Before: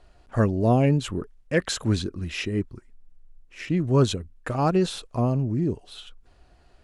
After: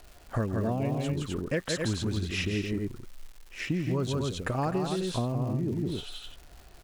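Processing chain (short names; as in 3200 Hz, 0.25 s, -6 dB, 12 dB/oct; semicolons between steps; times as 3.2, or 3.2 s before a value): loudspeakers at several distances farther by 57 m -4 dB, 88 m -7 dB; compressor 6:1, threshold -28 dBFS, peak gain reduction 14 dB; crackle 380/s -44 dBFS; gain +1.5 dB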